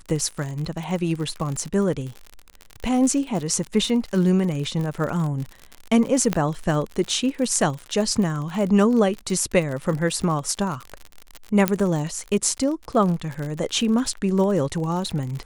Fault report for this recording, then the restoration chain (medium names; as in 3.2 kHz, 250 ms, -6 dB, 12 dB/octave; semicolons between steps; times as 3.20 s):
crackle 53 per s -27 dBFS
6.33 s: pop -8 dBFS
11.68 s: pop -3 dBFS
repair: de-click